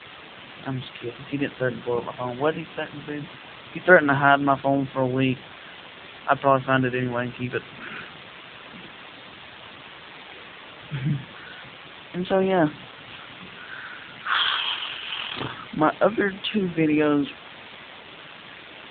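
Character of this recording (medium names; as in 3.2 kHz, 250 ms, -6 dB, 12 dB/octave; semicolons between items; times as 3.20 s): a quantiser's noise floor 6-bit, dither triangular; AMR-NB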